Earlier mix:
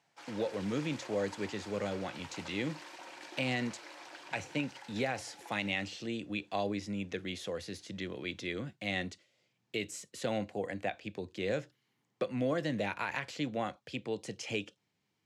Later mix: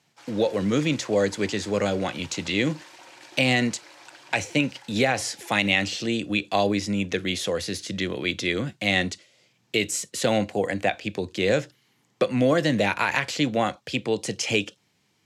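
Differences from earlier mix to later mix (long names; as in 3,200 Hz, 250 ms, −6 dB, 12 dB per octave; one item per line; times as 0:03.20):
speech +11.5 dB
master: add high-shelf EQ 3,900 Hz +6 dB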